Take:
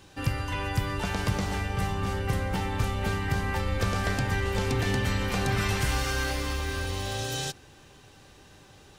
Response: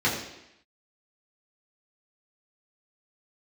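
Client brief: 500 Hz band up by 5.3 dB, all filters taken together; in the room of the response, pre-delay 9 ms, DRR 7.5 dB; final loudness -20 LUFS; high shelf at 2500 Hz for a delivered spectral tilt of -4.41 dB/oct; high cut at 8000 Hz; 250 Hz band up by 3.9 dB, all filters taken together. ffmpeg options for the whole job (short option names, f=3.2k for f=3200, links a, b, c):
-filter_complex "[0:a]lowpass=8k,equalizer=f=250:t=o:g=4,equalizer=f=500:t=o:g=5,highshelf=f=2.5k:g=8,asplit=2[a][b];[1:a]atrim=start_sample=2205,adelay=9[c];[b][c]afir=irnorm=-1:irlink=0,volume=-21.5dB[d];[a][d]amix=inputs=2:normalize=0,volume=5.5dB"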